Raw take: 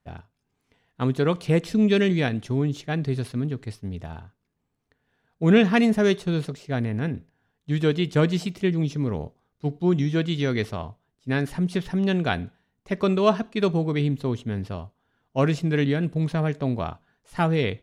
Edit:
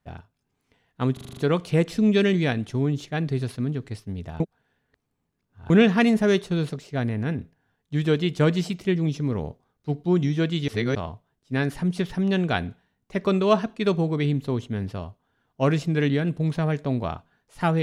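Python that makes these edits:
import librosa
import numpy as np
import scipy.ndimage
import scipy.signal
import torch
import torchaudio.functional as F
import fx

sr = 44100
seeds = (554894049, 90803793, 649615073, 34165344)

y = fx.edit(x, sr, fx.stutter(start_s=1.13, slice_s=0.04, count=7),
    fx.reverse_span(start_s=4.16, length_s=1.3),
    fx.reverse_span(start_s=10.44, length_s=0.27), tone=tone)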